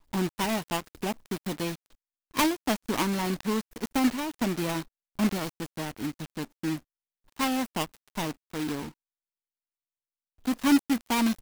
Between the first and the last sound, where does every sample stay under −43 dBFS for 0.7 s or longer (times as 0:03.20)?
0:08.90–0:10.45